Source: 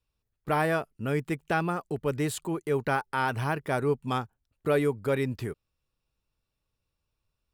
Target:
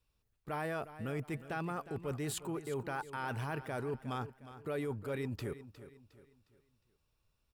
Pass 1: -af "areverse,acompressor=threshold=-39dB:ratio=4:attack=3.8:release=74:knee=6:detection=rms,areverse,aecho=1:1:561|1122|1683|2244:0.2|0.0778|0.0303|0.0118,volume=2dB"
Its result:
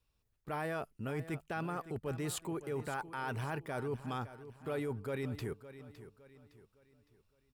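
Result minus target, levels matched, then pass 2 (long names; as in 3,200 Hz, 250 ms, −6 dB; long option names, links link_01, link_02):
echo 202 ms late
-af "areverse,acompressor=threshold=-39dB:ratio=4:attack=3.8:release=74:knee=6:detection=rms,areverse,aecho=1:1:359|718|1077|1436:0.2|0.0778|0.0303|0.0118,volume=2dB"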